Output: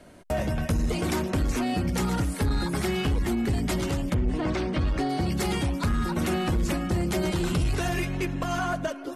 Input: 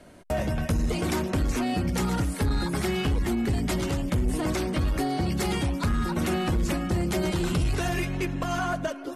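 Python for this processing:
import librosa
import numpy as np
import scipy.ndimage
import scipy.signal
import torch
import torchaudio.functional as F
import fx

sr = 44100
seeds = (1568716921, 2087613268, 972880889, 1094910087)

y = fx.lowpass(x, sr, hz=fx.line((4.13, 3100.0), (5.08, 6200.0)), slope=12, at=(4.13, 5.08), fade=0.02)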